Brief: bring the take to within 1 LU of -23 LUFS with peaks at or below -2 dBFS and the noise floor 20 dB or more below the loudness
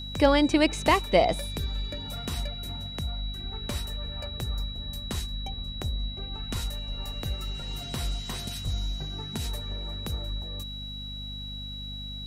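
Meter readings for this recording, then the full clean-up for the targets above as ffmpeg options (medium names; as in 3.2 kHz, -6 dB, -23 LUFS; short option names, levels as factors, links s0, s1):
hum 50 Hz; highest harmonic 250 Hz; hum level -37 dBFS; steady tone 3.9 kHz; tone level -38 dBFS; loudness -30.5 LUFS; peak level -7.5 dBFS; loudness target -23.0 LUFS
-> -af "bandreject=f=50:t=h:w=6,bandreject=f=100:t=h:w=6,bandreject=f=150:t=h:w=6,bandreject=f=200:t=h:w=6,bandreject=f=250:t=h:w=6"
-af "bandreject=f=3900:w=30"
-af "volume=2.37,alimiter=limit=0.794:level=0:latency=1"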